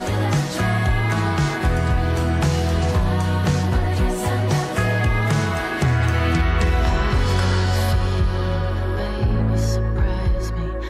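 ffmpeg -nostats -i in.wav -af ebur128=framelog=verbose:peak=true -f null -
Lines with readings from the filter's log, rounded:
Integrated loudness:
  I:         -20.5 LUFS
  Threshold: -30.5 LUFS
Loudness range:
  LRA:         1.2 LU
  Threshold: -40.3 LUFS
  LRA low:   -21.0 LUFS
  LRA high:  -19.7 LUFS
True peak:
  Peak:       -8.1 dBFS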